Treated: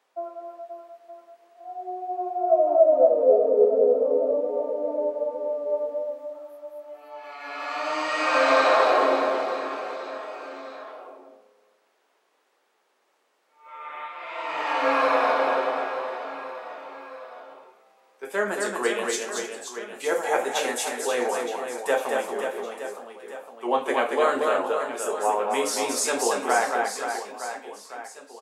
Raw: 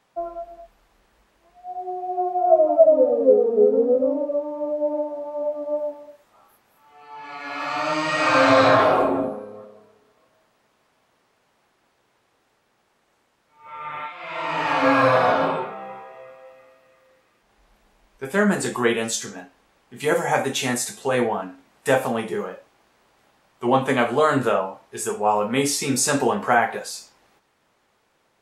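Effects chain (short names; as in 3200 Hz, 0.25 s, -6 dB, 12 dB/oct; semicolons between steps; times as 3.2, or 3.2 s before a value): ladder high-pass 290 Hz, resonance 20%; on a send: reverse bouncing-ball echo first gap 0.23 s, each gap 1.3×, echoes 5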